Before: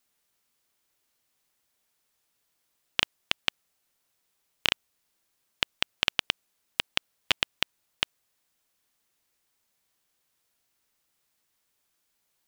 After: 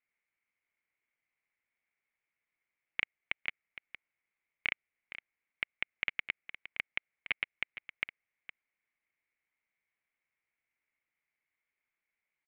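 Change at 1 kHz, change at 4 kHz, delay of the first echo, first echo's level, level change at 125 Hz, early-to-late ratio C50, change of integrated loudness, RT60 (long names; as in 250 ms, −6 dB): −13.5 dB, −16.5 dB, 463 ms, −13.0 dB, −13.5 dB, no reverb audible, −8.0 dB, no reverb audible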